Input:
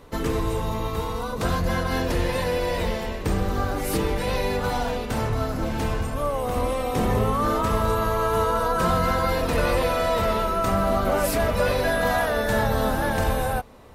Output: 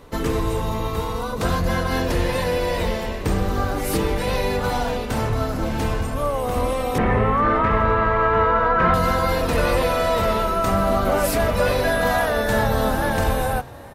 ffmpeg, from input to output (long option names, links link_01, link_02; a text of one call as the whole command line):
ffmpeg -i in.wav -filter_complex "[0:a]asettb=1/sr,asplit=3[link_01][link_02][link_03];[link_01]atrim=end=6.984[link_04];[link_02]atrim=start=6.98:end=8.94,asetpts=PTS-STARTPTS,afade=type=in:duration=0.004:curve=qsin,afade=type=out:start_time=1.956:duration=0.004:curve=qsin,lowpass=frequency=2000:width_type=q:width=2.4[link_05];[link_03]atrim=start=8.936[link_06];[link_04][link_05]acrossfade=duration=0.004:curve1=hsin:curve2=qsin[link_07];[link_07][link_06]acrossfade=duration=0.004:curve1=qsin:curve2=hsin,asplit=5[link_08][link_09][link_10][link_11][link_12];[link_09]adelay=425,afreqshift=39,volume=-22dB[link_13];[link_10]adelay=850,afreqshift=78,volume=-26.7dB[link_14];[link_11]adelay=1275,afreqshift=117,volume=-31.5dB[link_15];[link_12]adelay=1700,afreqshift=156,volume=-36.2dB[link_16];[link_08][link_13][link_14][link_15][link_16]amix=inputs=5:normalize=0,volume=2.5dB" out.wav